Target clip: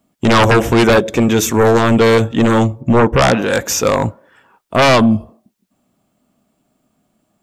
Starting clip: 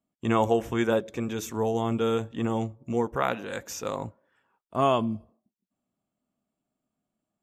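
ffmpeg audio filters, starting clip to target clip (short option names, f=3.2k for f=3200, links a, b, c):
-filter_complex "[0:a]asettb=1/sr,asplit=3[a][b][c];[a]atrim=end=2.814[d];[b]atrim=start=2.81:end=3.42,asetpts=PTS-STARTPTS,afade=t=in:d=0.004:c=qsin,afade=t=out:st=0.606:d=0.004:c=qsin,bass=f=250:g=4,treble=f=4k:g=-10[e];[c]atrim=start=3.416[f];[d][e]acrossfade=d=0.004:c1=hsin:c2=qsin[g];[g][f]acrossfade=d=0.004:c1=qsin:c2=hsin,aeval=exprs='0.501*sin(PI/2*6.31*val(0)/0.501)':c=same"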